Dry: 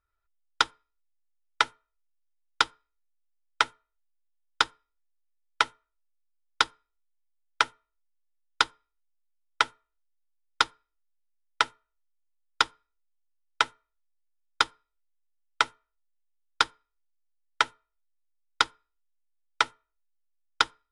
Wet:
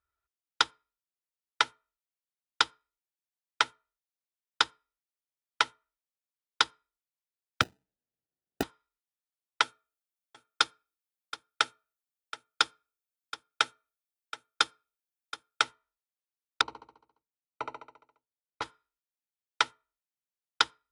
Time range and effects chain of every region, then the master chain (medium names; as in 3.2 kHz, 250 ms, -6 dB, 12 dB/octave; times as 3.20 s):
7.61–8.63 s: peaking EQ 1.5 kHz -9 dB 0.32 oct + sample-rate reducer 1.1 kHz
9.62–15.63 s: treble shelf 8.7 kHz +9 dB + comb of notches 970 Hz + delay 725 ms -13.5 dB
16.61–18.62 s: boxcar filter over 26 samples + feedback delay 69 ms, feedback 57%, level -4 dB
whole clip: high-pass 58 Hz 12 dB/octave; dynamic bell 4.4 kHz, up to +4 dB, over -35 dBFS, Q 0.71; trim -3.5 dB